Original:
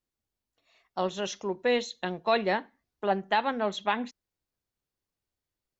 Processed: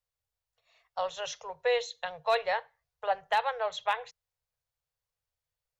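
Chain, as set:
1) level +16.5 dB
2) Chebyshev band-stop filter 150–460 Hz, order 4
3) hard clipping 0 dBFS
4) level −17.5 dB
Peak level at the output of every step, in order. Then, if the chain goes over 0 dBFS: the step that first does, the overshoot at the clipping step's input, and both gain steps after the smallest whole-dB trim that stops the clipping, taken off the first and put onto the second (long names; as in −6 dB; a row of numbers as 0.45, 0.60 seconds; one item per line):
+3.5, +3.5, 0.0, −17.5 dBFS
step 1, 3.5 dB
step 1 +12.5 dB, step 4 −13.5 dB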